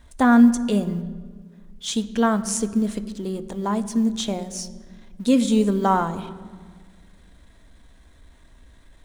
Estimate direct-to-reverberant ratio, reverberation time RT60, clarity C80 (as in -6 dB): 10.5 dB, 1.7 s, 16.0 dB